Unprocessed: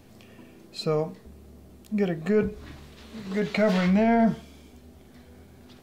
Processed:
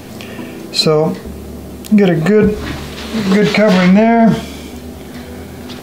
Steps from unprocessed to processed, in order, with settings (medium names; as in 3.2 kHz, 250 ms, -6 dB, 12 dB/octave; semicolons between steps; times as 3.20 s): bass shelf 75 Hz -9.5 dB; loudness maximiser +24 dB; trim -1 dB